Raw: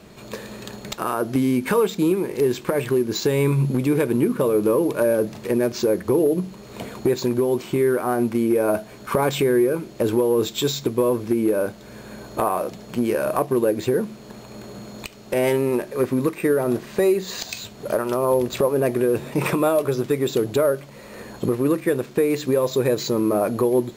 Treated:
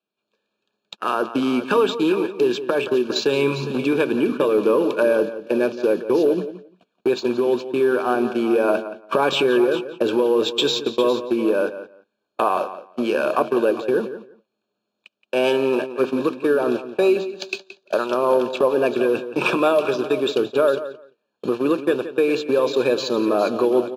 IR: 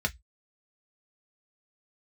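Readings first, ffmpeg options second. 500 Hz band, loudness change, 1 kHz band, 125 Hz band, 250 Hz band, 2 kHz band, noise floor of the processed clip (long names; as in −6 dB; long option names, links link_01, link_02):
+1.5 dB, +1.0 dB, +3.0 dB, −10.0 dB, −0.5 dB, +4.5 dB, −78 dBFS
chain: -filter_complex "[0:a]asuperstop=centerf=2000:order=8:qfactor=3.4,equalizer=frequency=2700:width_type=o:width=1.7:gain=8,asplit=2[link_01][link_02];[link_02]aecho=0:1:407:0.237[link_03];[link_01][link_03]amix=inputs=2:normalize=0,agate=range=-41dB:threshold=-23dB:ratio=16:detection=peak,acrossover=split=200 6100:gain=0.0891 1 0.158[link_04][link_05][link_06];[link_04][link_05][link_06]amix=inputs=3:normalize=0,asplit=2[link_07][link_08];[link_08]adelay=173,lowpass=frequency=4100:poles=1,volume=-12.5dB,asplit=2[link_09][link_10];[link_10]adelay=173,lowpass=frequency=4100:poles=1,volume=0.16[link_11];[link_09][link_11]amix=inputs=2:normalize=0[link_12];[link_07][link_12]amix=inputs=2:normalize=0,volume=1dB"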